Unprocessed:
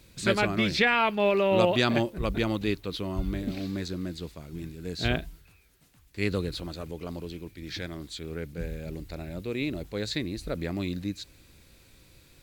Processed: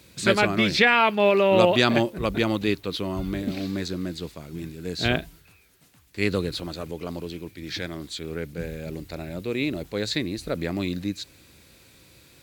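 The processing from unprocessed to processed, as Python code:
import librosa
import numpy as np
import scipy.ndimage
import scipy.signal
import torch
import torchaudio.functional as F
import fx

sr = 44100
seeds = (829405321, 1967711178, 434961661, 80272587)

y = scipy.signal.sosfilt(scipy.signal.butter(2, 65.0, 'highpass', fs=sr, output='sos'), x)
y = fx.low_shelf(y, sr, hz=140.0, db=-4.5)
y = y * librosa.db_to_amplitude(5.0)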